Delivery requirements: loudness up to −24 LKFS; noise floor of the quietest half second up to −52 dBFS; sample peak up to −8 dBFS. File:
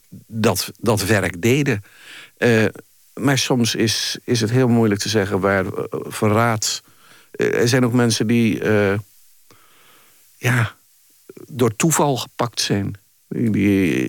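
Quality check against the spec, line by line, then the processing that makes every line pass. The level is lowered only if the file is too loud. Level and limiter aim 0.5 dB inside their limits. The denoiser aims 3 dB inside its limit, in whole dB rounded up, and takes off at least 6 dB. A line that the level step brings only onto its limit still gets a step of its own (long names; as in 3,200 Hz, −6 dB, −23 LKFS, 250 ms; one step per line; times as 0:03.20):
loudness −19.0 LKFS: out of spec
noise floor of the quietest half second −54 dBFS: in spec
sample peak −3.5 dBFS: out of spec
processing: level −5.5 dB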